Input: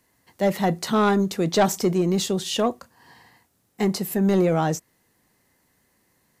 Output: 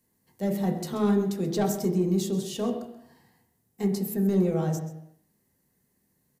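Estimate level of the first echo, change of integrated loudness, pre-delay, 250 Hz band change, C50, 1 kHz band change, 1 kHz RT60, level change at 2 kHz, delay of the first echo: −14.0 dB, −4.5 dB, 3 ms, −2.5 dB, 7.5 dB, −11.5 dB, 0.80 s, −13.0 dB, 132 ms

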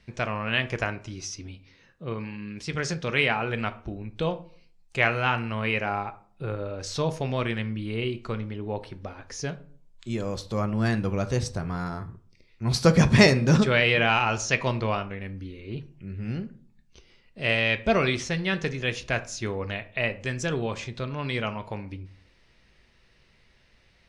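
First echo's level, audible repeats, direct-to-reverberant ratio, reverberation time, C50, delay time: no echo audible, no echo audible, 9.0 dB, 0.45 s, 17.0 dB, no echo audible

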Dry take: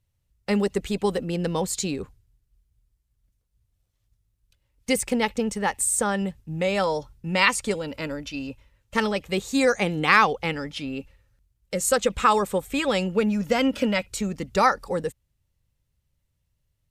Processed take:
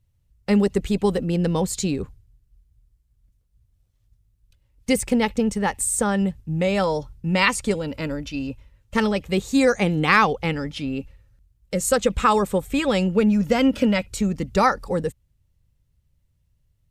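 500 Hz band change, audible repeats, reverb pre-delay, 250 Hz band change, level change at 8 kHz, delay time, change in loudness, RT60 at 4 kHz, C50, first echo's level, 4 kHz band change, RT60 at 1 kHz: +2.5 dB, no echo audible, no reverb audible, +5.0 dB, 0.0 dB, no echo audible, +2.5 dB, no reverb audible, no reverb audible, no echo audible, 0.0 dB, no reverb audible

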